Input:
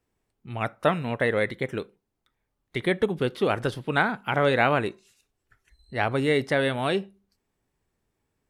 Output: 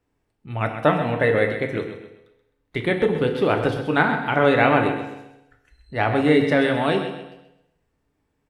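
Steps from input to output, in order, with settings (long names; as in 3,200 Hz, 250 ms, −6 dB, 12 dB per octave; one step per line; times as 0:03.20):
high-shelf EQ 4,400 Hz −9 dB
repeating echo 130 ms, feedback 34%, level −10 dB
feedback delay network reverb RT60 0.89 s, low-frequency decay 1×, high-frequency decay 0.95×, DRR 4.5 dB
level +3.5 dB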